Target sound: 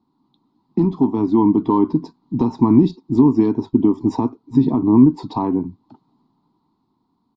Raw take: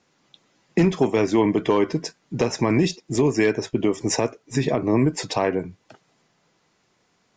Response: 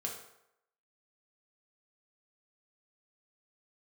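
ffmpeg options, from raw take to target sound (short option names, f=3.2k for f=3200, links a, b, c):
-af "firequalizer=gain_entry='entry(170,0);entry(260,10);entry(540,-20);entry(930,5);entry(1600,-25);entry(2700,-24);entry(4100,-8);entry(6000,-29);entry(11000,-24)':delay=0.05:min_phase=1,dynaudnorm=f=200:g=13:m=11.5dB,volume=-1dB"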